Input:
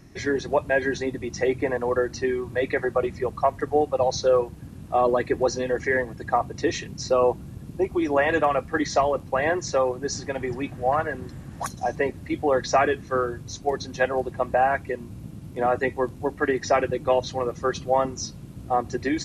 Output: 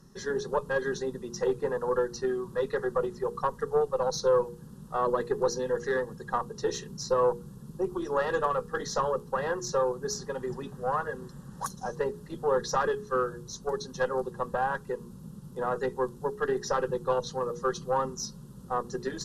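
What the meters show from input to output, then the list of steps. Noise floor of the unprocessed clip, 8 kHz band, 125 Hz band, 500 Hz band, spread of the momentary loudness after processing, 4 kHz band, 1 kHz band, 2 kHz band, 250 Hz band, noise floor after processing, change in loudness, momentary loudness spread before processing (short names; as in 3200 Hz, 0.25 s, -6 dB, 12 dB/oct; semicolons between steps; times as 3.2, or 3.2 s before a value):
-42 dBFS, -3.0 dB, -6.5 dB, -5.0 dB, 9 LU, -5.0 dB, -6.0 dB, -8.5 dB, -8.0 dB, -48 dBFS, -5.5 dB, 8 LU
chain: notches 60/120/180/240/300/360/420/480 Hz; tube stage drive 13 dB, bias 0.45; fixed phaser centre 450 Hz, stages 8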